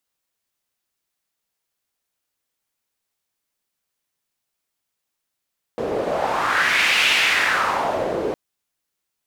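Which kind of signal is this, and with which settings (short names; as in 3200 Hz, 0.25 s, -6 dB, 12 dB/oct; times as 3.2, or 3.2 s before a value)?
wind-like swept noise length 2.56 s, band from 450 Hz, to 2600 Hz, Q 2.7, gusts 1, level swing 7 dB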